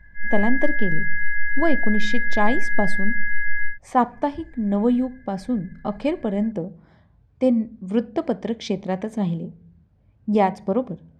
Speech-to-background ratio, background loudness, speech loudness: 1.0 dB, −25.5 LKFS, −24.5 LKFS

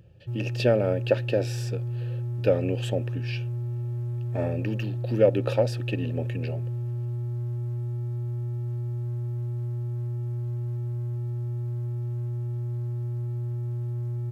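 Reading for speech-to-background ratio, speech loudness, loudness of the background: 3.5 dB, −28.0 LKFS, −31.5 LKFS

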